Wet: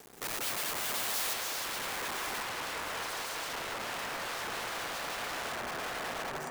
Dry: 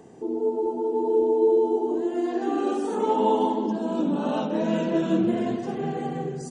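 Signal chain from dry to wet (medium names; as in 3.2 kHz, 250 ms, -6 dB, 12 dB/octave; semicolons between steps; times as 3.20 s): hum notches 50/100/150/200 Hz; integer overflow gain 28 dB; bass shelf 260 Hz -7.5 dB; feedback echo behind a band-pass 187 ms, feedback 85%, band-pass 900 Hz, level -3.5 dB; bit crusher 8-bit; treble shelf 6.7 kHz +11 dB, from 1.33 s +3 dB, from 2.43 s -4.5 dB; trim -5.5 dB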